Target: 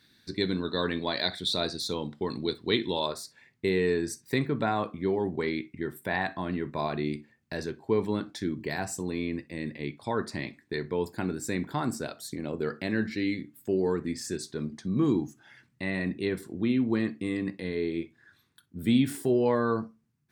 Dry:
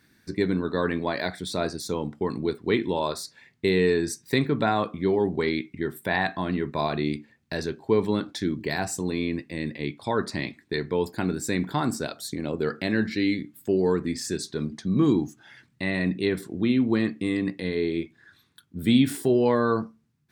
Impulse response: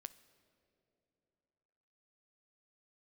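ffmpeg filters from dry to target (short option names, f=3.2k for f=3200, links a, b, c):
-filter_complex "[0:a]asetnsamples=n=441:p=0,asendcmd='3.06 equalizer g -3',equalizer=f=3.8k:t=o:w=0.62:g=13.5[a];[1:a]atrim=start_sample=2205,atrim=end_sample=3087[b];[a][b]afir=irnorm=-1:irlink=0,volume=1.5dB"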